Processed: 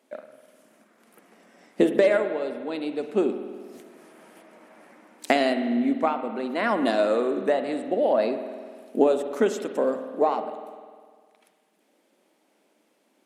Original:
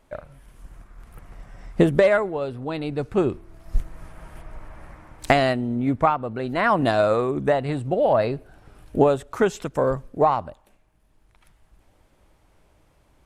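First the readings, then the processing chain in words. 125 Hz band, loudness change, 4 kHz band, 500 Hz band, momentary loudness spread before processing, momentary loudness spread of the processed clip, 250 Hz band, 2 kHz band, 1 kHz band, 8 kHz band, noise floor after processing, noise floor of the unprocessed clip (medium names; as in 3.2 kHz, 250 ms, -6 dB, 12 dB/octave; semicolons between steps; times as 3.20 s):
under -15 dB, -2.5 dB, -1.5 dB, -1.5 dB, 14 LU, 15 LU, -1.0 dB, -3.5 dB, -5.0 dB, no reading, -67 dBFS, -61 dBFS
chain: elliptic high-pass 220 Hz, stop band 60 dB; peaking EQ 1.1 kHz -7 dB 1.4 oct; spring tank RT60 1.8 s, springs 50 ms, chirp 20 ms, DRR 8 dB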